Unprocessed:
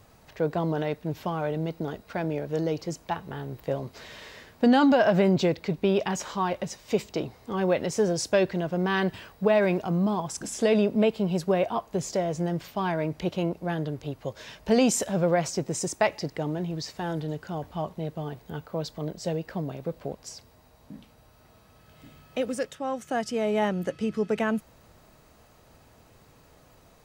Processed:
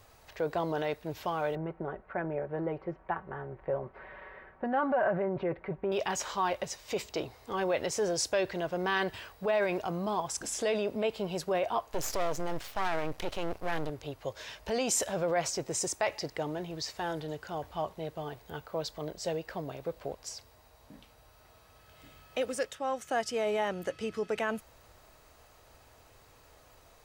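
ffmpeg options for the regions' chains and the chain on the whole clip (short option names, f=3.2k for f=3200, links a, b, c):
-filter_complex "[0:a]asettb=1/sr,asplit=3[a][b][c];[a]atrim=end=1.554[d];[b]atrim=start=1.55:end=5.92,asetpts=PTS-STARTPTS,afade=t=in:d=0.004:c=qsin,afade=t=out:st=4.366:d=0.004:c=qsin,lowpass=f=1.8k:w=0.5412,lowpass=f=1.8k:w=1.3066,aecho=1:1:5.3:0.52,atrim=end_sample=192717[e];[c]atrim=start=5.916[f];[d][e]acrossfade=d=0.004:c1=hsin:c2=qsin[g];[g][f]acrossfade=d=0.004:c1=qsin:c2=hsin,asettb=1/sr,asplit=3[h][i][j];[h]atrim=end=11.924[k];[i]atrim=start=11.92:end=13.9,asetpts=PTS-STARTPTS,afade=t=in:d=0.004:c=qsin,afade=t=out:st=1.976:d=0.004:c=qsin,acontrast=36,aeval=exprs='max(val(0),0)':c=same[l];[j]atrim=start=13.896[m];[k][l]acrossfade=d=0.004:c1=hsin:c2=qsin[n];[n][m]acrossfade=d=0.004:c1=qsin:c2=hsin,alimiter=limit=-18.5dB:level=0:latency=1:release=15,equalizer=f=190:t=o:w=1.5:g=-12"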